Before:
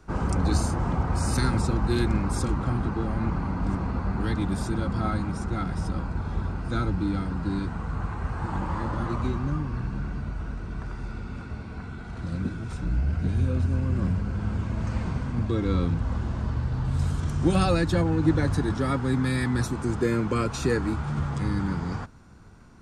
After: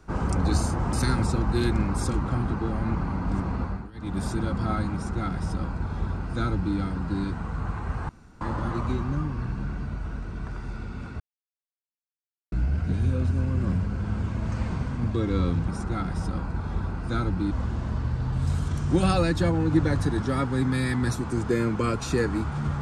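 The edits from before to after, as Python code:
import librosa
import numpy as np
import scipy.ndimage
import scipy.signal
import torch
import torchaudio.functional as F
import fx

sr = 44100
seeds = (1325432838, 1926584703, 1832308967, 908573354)

y = fx.edit(x, sr, fx.cut(start_s=0.93, length_s=0.35),
    fx.fade_down_up(start_s=3.97, length_s=0.6, db=-22.0, fade_s=0.29),
    fx.duplicate(start_s=5.29, length_s=1.83, to_s=16.03),
    fx.room_tone_fill(start_s=8.44, length_s=0.32),
    fx.silence(start_s=11.55, length_s=1.32), tone=tone)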